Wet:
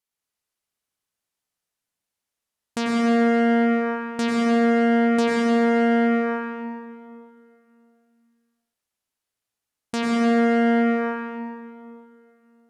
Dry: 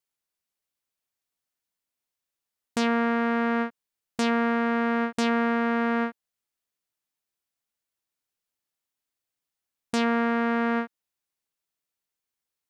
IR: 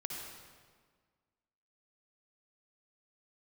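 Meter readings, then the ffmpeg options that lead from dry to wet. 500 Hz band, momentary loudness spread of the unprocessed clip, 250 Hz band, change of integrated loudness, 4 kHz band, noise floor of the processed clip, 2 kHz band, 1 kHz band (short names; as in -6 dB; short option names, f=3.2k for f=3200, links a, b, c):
+7.0 dB, 8 LU, +6.5 dB, +5.0 dB, +2.5 dB, under -85 dBFS, +2.0 dB, +2.5 dB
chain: -filter_complex "[1:a]atrim=start_sample=2205,asetrate=26019,aresample=44100[a];[0:a][a]afir=irnorm=-1:irlink=0"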